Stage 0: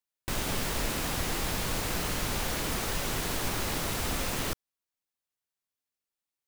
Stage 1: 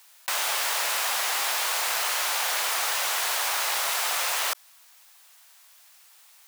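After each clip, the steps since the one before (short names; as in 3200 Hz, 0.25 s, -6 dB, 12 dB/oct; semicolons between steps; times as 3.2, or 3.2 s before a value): HPF 700 Hz 24 dB/oct; fast leveller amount 50%; gain +7.5 dB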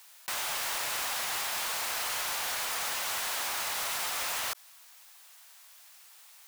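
limiter -22 dBFS, peak gain reduction 7.5 dB; wavefolder -27.5 dBFS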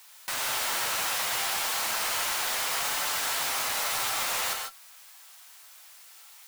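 octaver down 1 oct, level -4 dB; flange 0.33 Hz, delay 6.5 ms, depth 3.9 ms, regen +48%; non-linear reverb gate 0.17 s rising, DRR 2.5 dB; gain +6 dB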